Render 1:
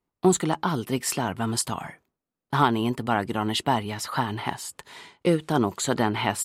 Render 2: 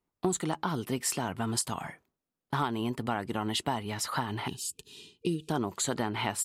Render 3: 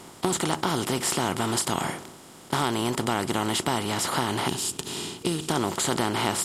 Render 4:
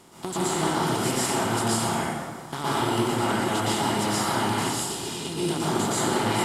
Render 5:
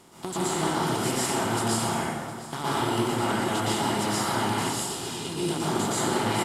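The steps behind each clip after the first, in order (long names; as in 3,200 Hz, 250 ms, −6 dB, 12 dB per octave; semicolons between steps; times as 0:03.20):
gain on a spectral selection 0:04.47–0:05.50, 470–2,400 Hz −23 dB; dynamic equaliser 8,300 Hz, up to +4 dB, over −38 dBFS, Q 0.72; downward compressor 3 to 1, threshold −26 dBFS, peak gain reduction 9.5 dB; level −2 dB
compressor on every frequency bin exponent 0.4
dense smooth reverb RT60 1.6 s, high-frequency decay 0.6×, pre-delay 105 ms, DRR −9 dB; level −8 dB
single-tap delay 712 ms −17 dB; level −1.5 dB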